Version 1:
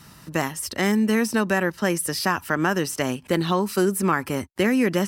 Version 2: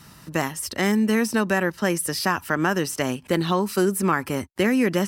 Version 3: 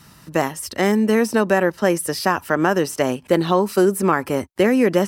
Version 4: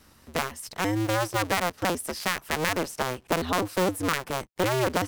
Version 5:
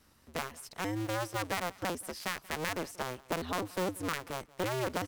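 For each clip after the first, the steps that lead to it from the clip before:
no audible change
dynamic bell 550 Hz, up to +8 dB, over -36 dBFS, Q 0.78
cycle switcher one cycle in 2, inverted; trim -9 dB
feedback delay 182 ms, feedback 17%, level -22.5 dB; trim -8.5 dB

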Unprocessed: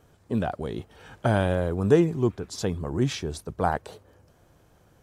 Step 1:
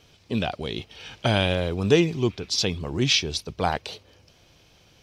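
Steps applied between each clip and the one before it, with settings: high-order bell 3.6 kHz +15 dB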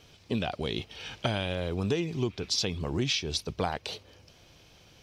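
compression 10:1, threshold -25 dBFS, peak gain reduction 13 dB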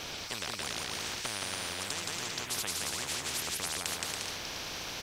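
on a send: bouncing-ball echo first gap 170 ms, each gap 0.65×, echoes 5; on the sum: spectrum-flattening compressor 10:1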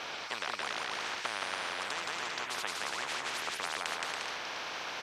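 band-pass filter 1.2 kHz, Q 0.78; trim +5.5 dB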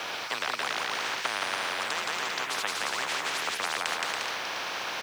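in parallel at -11 dB: bit crusher 7-bit; on the sum: frequency shift +25 Hz; trim +3.5 dB

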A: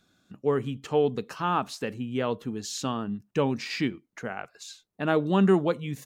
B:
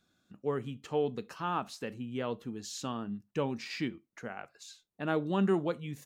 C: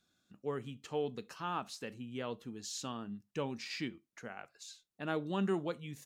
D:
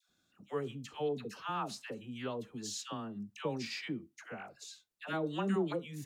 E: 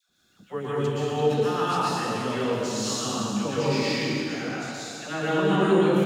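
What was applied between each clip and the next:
reverberation, pre-delay 3 ms, DRR 16.5 dB; trim -7 dB
peaking EQ 6.6 kHz +5.5 dB 2.9 oct; trim -5.5 dB
phase dispersion lows, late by 92 ms, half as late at 870 Hz; trim +1 dB
plate-style reverb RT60 2.8 s, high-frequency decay 0.9×, pre-delay 105 ms, DRR -9.5 dB; trim +4 dB

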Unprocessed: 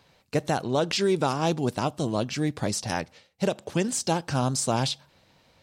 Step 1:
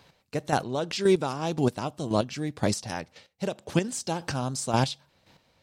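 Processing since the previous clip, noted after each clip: square tremolo 1.9 Hz, depth 60%, duty 20%; trim +3 dB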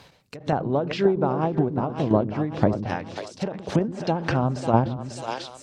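two-band feedback delay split 340 Hz, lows 123 ms, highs 543 ms, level -11 dB; low-pass that closes with the level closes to 1 kHz, closed at -24 dBFS; endings held to a fixed fall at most 110 dB/s; trim +7.5 dB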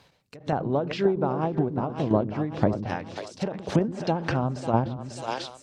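level rider gain up to 11.5 dB; trim -8 dB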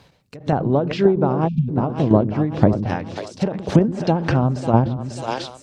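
spectral selection erased 1.48–1.69 s, 240–2300 Hz; bass shelf 390 Hz +6 dB; trim +4 dB

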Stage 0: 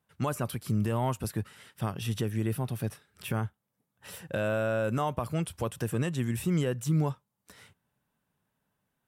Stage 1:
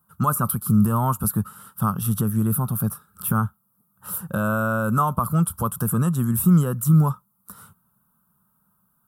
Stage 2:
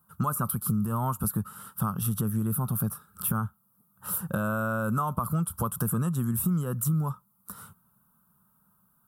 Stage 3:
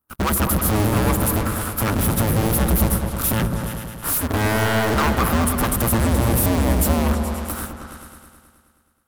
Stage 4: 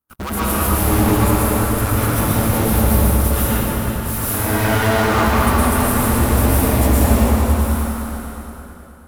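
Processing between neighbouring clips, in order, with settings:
FFT filter 130 Hz 0 dB, 200 Hz +7 dB, 290 Hz -7 dB, 700 Hz -7 dB, 1.3 kHz +10 dB, 2 kHz -22 dB, 3.2 kHz -12 dB, 6.3 kHz -7 dB, 12 kHz +13 dB; trim +8 dB
compression 5:1, threshold -25 dBFS, peak gain reduction 12 dB
cycle switcher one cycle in 2, inverted; waveshaping leveller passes 5; delay with an opening low-pass 106 ms, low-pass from 400 Hz, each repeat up 2 oct, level -3 dB; trim -2.5 dB
plate-style reverb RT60 3.3 s, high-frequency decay 0.7×, pre-delay 100 ms, DRR -9 dB; trim -6 dB

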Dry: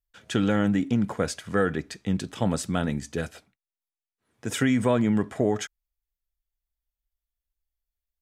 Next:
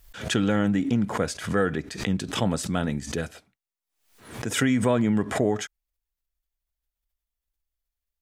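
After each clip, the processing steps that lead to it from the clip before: swell ahead of each attack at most 100 dB/s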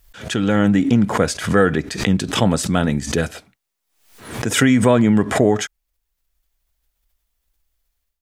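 level rider gain up to 14 dB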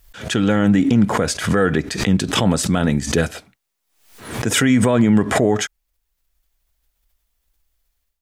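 peak limiter -7.5 dBFS, peak gain reduction 6 dB; trim +2 dB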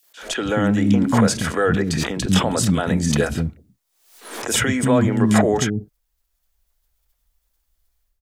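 three bands offset in time highs, mids, lows 30/220 ms, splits 290/2500 Hz

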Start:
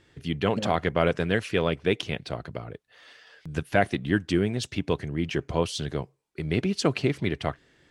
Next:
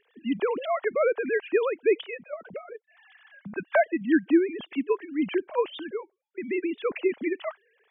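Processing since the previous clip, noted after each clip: formants replaced by sine waves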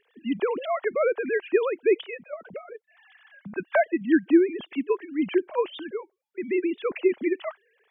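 dynamic bell 360 Hz, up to +5 dB, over -37 dBFS, Q 6.9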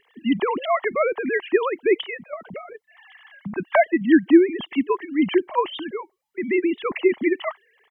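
comb 1 ms, depth 52%; trim +6 dB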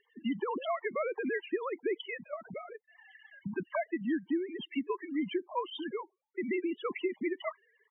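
compression 6:1, threshold -23 dBFS, peak gain reduction 14.5 dB; loudest bins only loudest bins 16; trim -6.5 dB

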